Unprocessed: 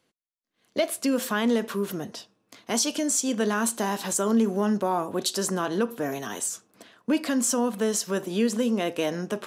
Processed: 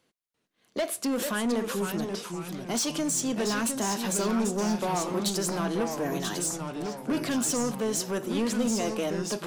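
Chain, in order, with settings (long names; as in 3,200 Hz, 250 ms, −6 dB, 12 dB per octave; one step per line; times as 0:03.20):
soft clipping −23 dBFS, distortion −12 dB
delay with pitch and tempo change per echo 343 ms, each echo −2 semitones, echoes 3, each echo −6 dB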